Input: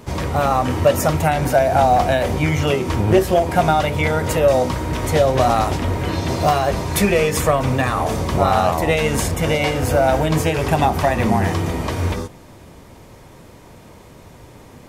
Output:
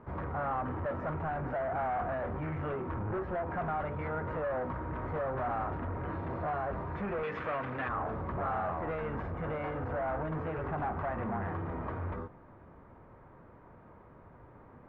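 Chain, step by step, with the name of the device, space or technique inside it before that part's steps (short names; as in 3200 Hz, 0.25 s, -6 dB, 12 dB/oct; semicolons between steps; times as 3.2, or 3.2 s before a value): overdriven synthesiser ladder filter (soft clip -19.5 dBFS, distortion -8 dB; ladder low-pass 1700 Hz, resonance 40%); 7.23–7.89 weighting filter D; gain -4.5 dB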